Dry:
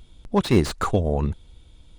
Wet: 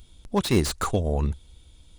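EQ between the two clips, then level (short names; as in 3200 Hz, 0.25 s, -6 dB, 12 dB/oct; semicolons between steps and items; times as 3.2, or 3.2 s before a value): bell 69 Hz +5.5 dB 0.28 oct; high shelf 4400 Hz +11 dB; -3.5 dB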